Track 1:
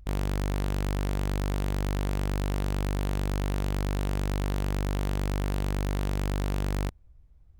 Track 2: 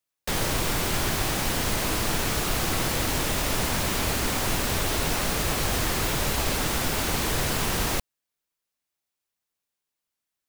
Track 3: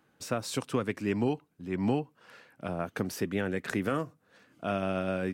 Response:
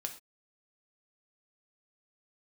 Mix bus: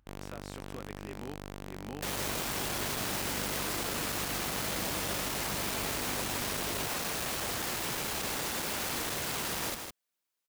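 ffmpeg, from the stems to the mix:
-filter_complex "[0:a]volume=0.376[s0];[1:a]volume=35.5,asoftclip=hard,volume=0.0282,adelay=1750,volume=0.841,asplit=2[s1][s2];[s2]volume=0.501[s3];[2:a]volume=0.178[s4];[s3]aecho=0:1:159:1[s5];[s0][s1][s4][s5]amix=inputs=4:normalize=0,highpass=f=210:p=1"

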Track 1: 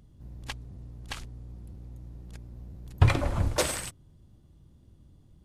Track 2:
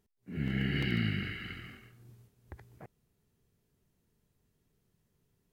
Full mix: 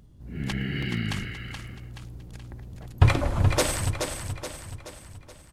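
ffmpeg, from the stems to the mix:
-filter_complex "[0:a]volume=1.33,asplit=2[s0][s1];[s1]volume=0.473[s2];[1:a]volume=1.19[s3];[s2]aecho=0:1:426|852|1278|1704|2130|2556|2982:1|0.48|0.23|0.111|0.0531|0.0255|0.0122[s4];[s0][s3][s4]amix=inputs=3:normalize=0"

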